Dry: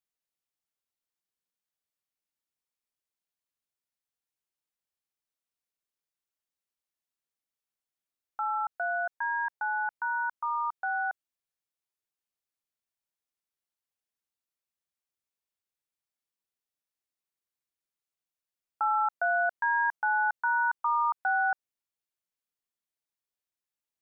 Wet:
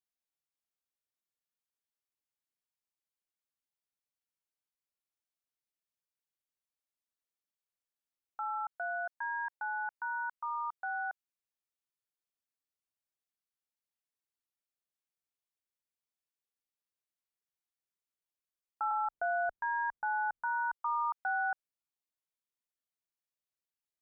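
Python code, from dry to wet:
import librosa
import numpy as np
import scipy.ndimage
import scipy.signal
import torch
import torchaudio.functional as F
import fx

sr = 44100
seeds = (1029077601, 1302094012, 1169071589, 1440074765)

y = fx.tilt_eq(x, sr, slope=-4.0, at=(18.91, 20.73))
y = y * 10.0 ** (-6.0 / 20.0)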